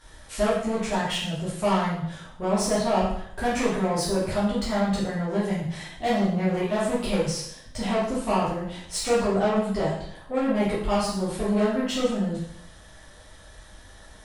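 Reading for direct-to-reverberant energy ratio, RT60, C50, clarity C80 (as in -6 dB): -9.5 dB, 0.70 s, 1.5 dB, 5.5 dB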